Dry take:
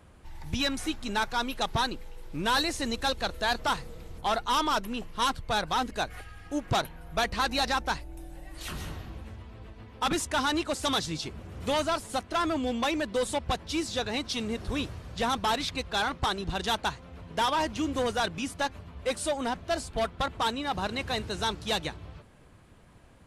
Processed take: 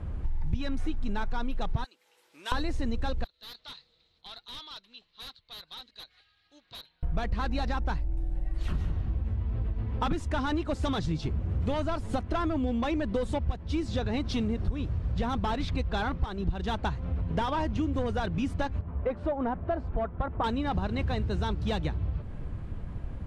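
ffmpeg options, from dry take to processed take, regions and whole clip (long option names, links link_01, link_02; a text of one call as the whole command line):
ffmpeg -i in.wav -filter_complex "[0:a]asettb=1/sr,asplit=3[link_01][link_02][link_03];[link_01]atrim=end=1.844[link_04];[link_02]atrim=start=1.84:end=2.52,asetpts=PTS-STARTPTS,afade=type=in:duration=0.004:curve=qsin,afade=type=out:start_time=0.676:duration=0.004:curve=qsin,highpass=340,aderivative[link_05];[link_03]atrim=start=2.516[link_06];[link_04][link_05]acrossfade=duration=0.004:curve1=hsin:curve2=qsin[link_07];[link_07][link_06]acrossfade=duration=0.004:curve1=qsin:curve2=hsin,asettb=1/sr,asplit=3[link_08][link_09][link_10];[link_08]atrim=end=3.244[link_11];[link_09]atrim=start=3.24:end=7.03,asetpts=PTS-STARTPTS,afade=type=in:duration=0.004:curve=qsin,afade=type=out:start_time=3.786:duration=0.004:curve=qsin,bandpass=frequency=4000:width_type=q:width=8,aeval=exprs='0.0133*(abs(mod(val(0)/0.0133+3,4)-2)-1)':channel_layout=same[link_12];[link_10]atrim=start=7.026[link_13];[link_11][link_12]acrossfade=duration=0.004:curve1=hsin:curve2=qsin[link_14];[link_14][link_13]acrossfade=duration=0.004:curve1=qsin:curve2=hsin,asettb=1/sr,asplit=3[link_15][link_16][link_17];[link_15]atrim=end=18.814[link_18];[link_16]atrim=start=18.81:end=20.44,asetpts=PTS-STARTPTS,afade=type=in:duration=0.004:curve=qsin,afade=type=out:start_time=1.626:duration=0.004:curve=qsin,lowpass=1400,lowshelf=frequency=260:gain=-9.5[link_19];[link_17]atrim=start=20.436[link_20];[link_18][link_19]acrossfade=duration=0.004:curve1=hsin:curve2=qsin[link_21];[link_21][link_20]acrossfade=duration=0.004:curve1=qsin:curve2=hsin,aemphasis=mode=reproduction:type=riaa,acompressor=threshold=-33dB:ratio=6,volume=6.5dB" out.wav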